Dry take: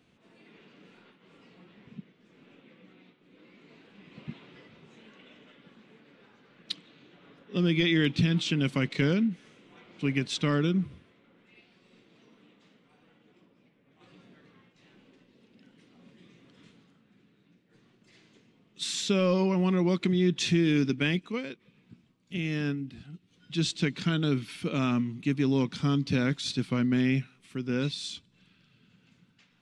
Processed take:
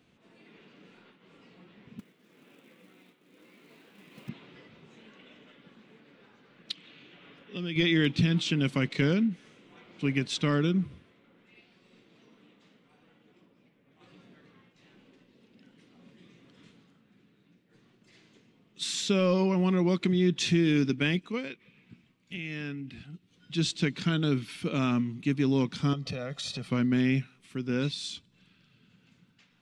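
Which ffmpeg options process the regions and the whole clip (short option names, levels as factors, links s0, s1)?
-filter_complex "[0:a]asettb=1/sr,asplit=3[s0][s1][s2];[s0]atrim=end=1.994[s3];[s1]atrim=start=1.99:end=4.29,asetpts=PTS-STARTPTS,afade=t=in:d=0.004:c=qsin,afade=t=out:st=2.296:d=0.004:c=qsin,highpass=f=210:p=1,acrusher=bits=3:mode=log:mix=0:aa=0.000001[s4];[s2]atrim=start=4.286[s5];[s3][s4]acrossfade=d=0.004:c1=hsin:c2=qsin[s6];[s6][s5]acrossfade=d=0.004:c1=qsin:c2=hsin,asettb=1/sr,asplit=3[s7][s8][s9];[s7]atrim=end=6.714[s10];[s8]atrim=start=6.71:end=7.76,asetpts=PTS-STARTPTS,afade=t=in:d=0.004:c=qsin,afade=t=out:st=1.046:d=0.004:c=qsin,equalizer=f=2700:t=o:w=1.3:g=8,bandreject=f=3900:w=24,acompressor=threshold=0.00398:ratio=1.5:attack=3.2:release=140:knee=1:detection=peak[s11];[s9]atrim=start=7.756[s12];[s10][s11]acrossfade=d=0.004:c1=hsin:c2=qsin[s13];[s13][s12]acrossfade=d=0.004:c1=qsin:c2=hsin,asettb=1/sr,asplit=3[s14][s15][s16];[s14]atrim=end=21.474[s17];[s15]atrim=start=21.47:end=23.05,asetpts=PTS-STARTPTS,afade=t=in:d=0.004:c=qsin,afade=t=out:st=1.576:d=0.004:c=qsin,equalizer=f=2300:w=1.4:g=8,acompressor=threshold=0.0158:ratio=2.5:attack=3.2:release=140:knee=1:detection=peak[s18];[s16]atrim=start=23.046[s19];[s17][s18]acrossfade=d=0.004:c1=hsin:c2=qsin[s20];[s20][s19]acrossfade=d=0.004:c1=qsin:c2=hsin,asettb=1/sr,asplit=3[s21][s22][s23];[s21]atrim=end=25.934[s24];[s22]atrim=start=25.93:end=26.68,asetpts=PTS-STARTPTS,afade=t=in:d=0.004:c=qsin,afade=t=out:st=0.746:d=0.004:c=qsin,equalizer=f=660:w=0.71:g=9.5,aecho=1:1:1.6:0.82,atrim=end_sample=33075,acompressor=threshold=0.0251:ratio=8:attack=3.2:release=140:knee=1:detection=peak[s25];[s23]atrim=start=26.676[s26];[s24][s25]acrossfade=d=0.004:c1=hsin:c2=qsin[s27];[s27][s26]acrossfade=d=0.004:c1=qsin:c2=hsin"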